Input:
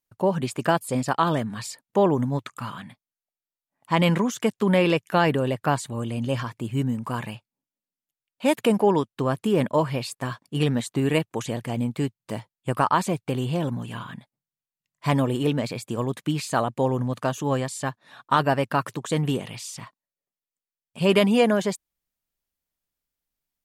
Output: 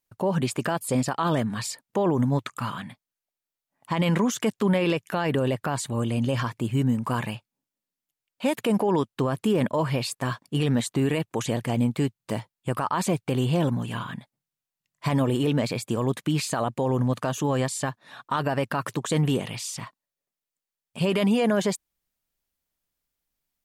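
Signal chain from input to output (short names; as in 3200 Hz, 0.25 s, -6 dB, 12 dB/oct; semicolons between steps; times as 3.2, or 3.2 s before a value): limiter -18 dBFS, peak gain reduction 11 dB; gain +3 dB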